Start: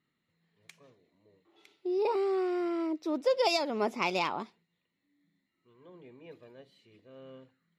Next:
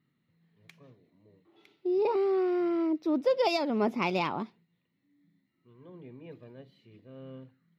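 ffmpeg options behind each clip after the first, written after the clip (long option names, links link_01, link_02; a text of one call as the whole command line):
ffmpeg -i in.wav -af "equalizer=frequency=125:width_type=o:width=1:gain=10,equalizer=frequency=250:width_type=o:width=1:gain=5,equalizer=frequency=8000:width_type=o:width=1:gain=-11" out.wav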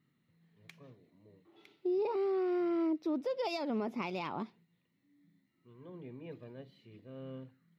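ffmpeg -i in.wav -af "alimiter=level_in=3dB:limit=-24dB:level=0:latency=1:release=356,volume=-3dB" out.wav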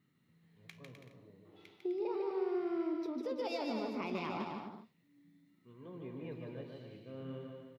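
ffmpeg -i in.wav -filter_complex "[0:a]acompressor=threshold=-37dB:ratio=6,flanger=delay=9.3:depth=8.7:regen=71:speed=0.67:shape=triangular,asplit=2[link_01][link_02];[link_02]aecho=0:1:150|255|328.5|380|416:0.631|0.398|0.251|0.158|0.1[link_03];[link_01][link_03]amix=inputs=2:normalize=0,volume=5dB" out.wav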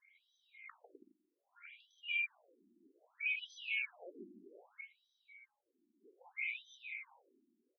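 ffmpeg -i in.wav -af "afftfilt=real='real(if(lt(b,920),b+92*(1-2*mod(floor(b/92),2)),b),0)':imag='imag(if(lt(b,920),b+92*(1-2*mod(floor(b/92),2)),b),0)':win_size=2048:overlap=0.75,alimiter=level_in=11dB:limit=-24dB:level=0:latency=1:release=78,volume=-11dB,afftfilt=real='re*between(b*sr/1024,250*pow(4400/250,0.5+0.5*sin(2*PI*0.63*pts/sr))/1.41,250*pow(4400/250,0.5+0.5*sin(2*PI*0.63*pts/sr))*1.41)':imag='im*between(b*sr/1024,250*pow(4400/250,0.5+0.5*sin(2*PI*0.63*pts/sr))/1.41,250*pow(4400/250,0.5+0.5*sin(2*PI*0.63*pts/sr))*1.41)':win_size=1024:overlap=0.75,volume=7dB" out.wav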